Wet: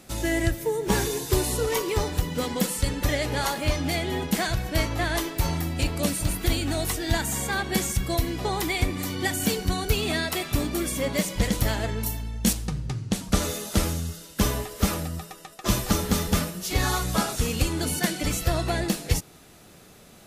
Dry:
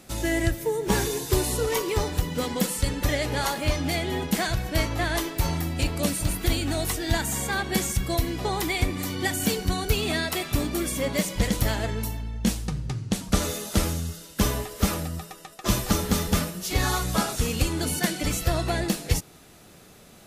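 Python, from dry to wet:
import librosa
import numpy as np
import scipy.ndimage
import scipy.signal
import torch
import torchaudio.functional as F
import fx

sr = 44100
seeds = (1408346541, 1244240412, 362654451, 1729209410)

y = fx.high_shelf(x, sr, hz=5900.0, db=11.5, at=(12.06, 12.53))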